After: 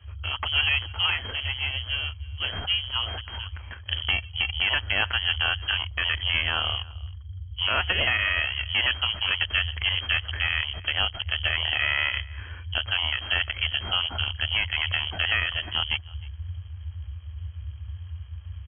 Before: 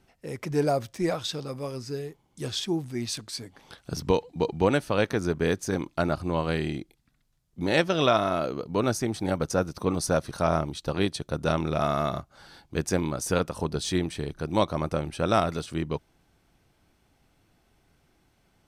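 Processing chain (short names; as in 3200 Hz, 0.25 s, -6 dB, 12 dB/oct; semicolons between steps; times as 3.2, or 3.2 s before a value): half-wave gain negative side -7 dB; bell 1900 Hz +9 dB 1.5 oct; in parallel at -11.5 dB: requantised 6-bit, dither none; on the sum: compressor 1.5:1, threshold -30 dBFS, peak gain reduction 6.5 dB; limiter -15 dBFS, peak gain reduction 6 dB; on a send: echo 0.312 s -23.5 dB; on the sum: inverted band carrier 3200 Hz; band noise 63–96 Hz -40 dBFS; gain +3.5 dB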